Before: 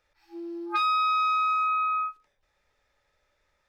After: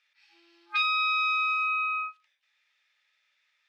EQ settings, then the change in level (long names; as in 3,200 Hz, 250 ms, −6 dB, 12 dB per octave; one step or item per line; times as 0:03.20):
high-pass with resonance 2,700 Hz, resonance Q 1.6
high-frequency loss of the air 53 metres
high-shelf EQ 3,600 Hz −8.5 dB
+7.5 dB